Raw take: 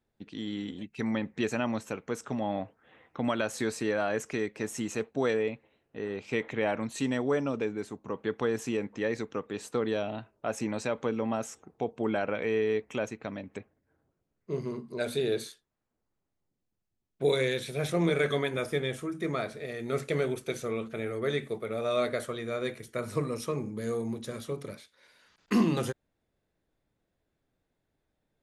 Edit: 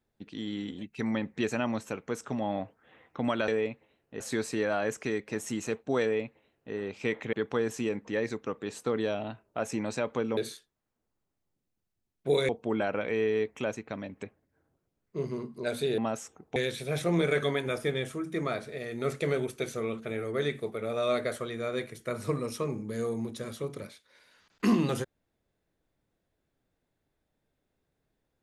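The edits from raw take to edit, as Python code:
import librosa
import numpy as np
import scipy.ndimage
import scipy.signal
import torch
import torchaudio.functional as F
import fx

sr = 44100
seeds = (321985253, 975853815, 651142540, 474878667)

y = fx.edit(x, sr, fx.duplicate(start_s=5.3, length_s=0.72, to_s=3.48),
    fx.cut(start_s=6.61, length_s=1.6),
    fx.swap(start_s=11.25, length_s=0.58, other_s=15.32, other_length_s=2.12), tone=tone)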